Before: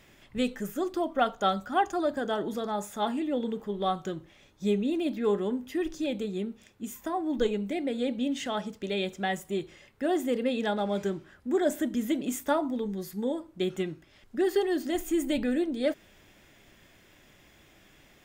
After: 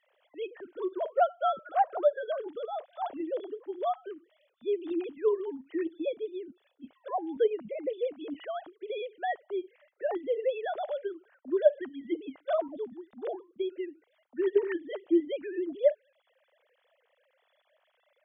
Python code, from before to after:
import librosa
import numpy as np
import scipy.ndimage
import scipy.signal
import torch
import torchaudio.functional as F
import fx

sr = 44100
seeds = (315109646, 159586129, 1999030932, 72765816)

y = fx.sine_speech(x, sr)
y = fx.graphic_eq_15(y, sr, hz=(250, 630, 2500), db=(-9, 7, -4))
y = F.gain(torch.from_numpy(y), -3.0).numpy()